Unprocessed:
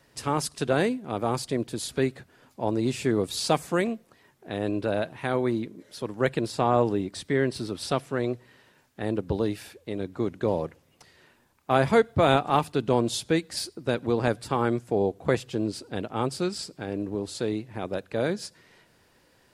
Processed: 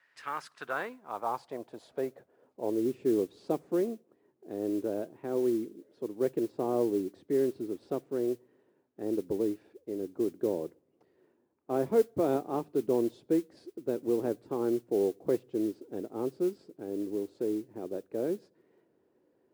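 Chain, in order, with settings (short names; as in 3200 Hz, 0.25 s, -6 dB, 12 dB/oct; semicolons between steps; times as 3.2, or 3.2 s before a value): band-pass sweep 1800 Hz -> 360 Hz, 0.11–2.92; modulation noise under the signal 26 dB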